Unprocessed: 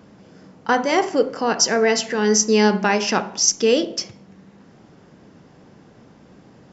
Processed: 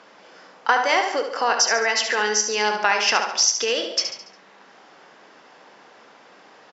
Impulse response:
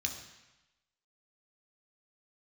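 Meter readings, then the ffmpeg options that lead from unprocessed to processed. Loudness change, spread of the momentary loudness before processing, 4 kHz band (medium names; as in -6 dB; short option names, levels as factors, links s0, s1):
-1.5 dB, 8 LU, +2.0 dB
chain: -filter_complex "[0:a]acompressor=threshold=0.1:ratio=6,highpass=790,lowpass=5300,asplit=2[s0][s1];[s1]aecho=0:1:71|142|213|284|355:0.398|0.183|0.0842|0.0388|0.0178[s2];[s0][s2]amix=inputs=2:normalize=0,volume=2.51"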